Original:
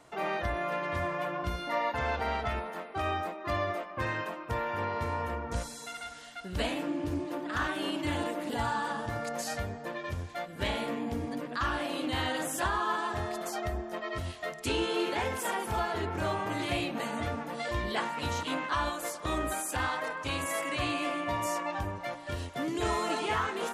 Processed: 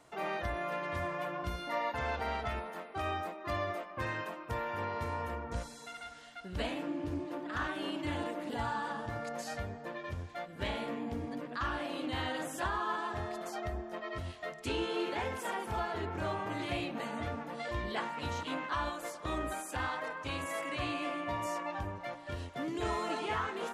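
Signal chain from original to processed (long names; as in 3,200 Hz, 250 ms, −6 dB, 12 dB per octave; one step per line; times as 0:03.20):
high-shelf EQ 6,400 Hz +2 dB, from 0:05.44 −8.5 dB
level −4 dB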